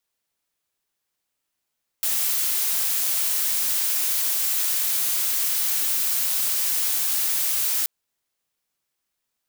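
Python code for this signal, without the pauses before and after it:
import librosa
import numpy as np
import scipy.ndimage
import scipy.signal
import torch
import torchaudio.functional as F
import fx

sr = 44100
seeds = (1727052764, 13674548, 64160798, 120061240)

y = fx.noise_colour(sr, seeds[0], length_s=5.83, colour='blue', level_db=-23.0)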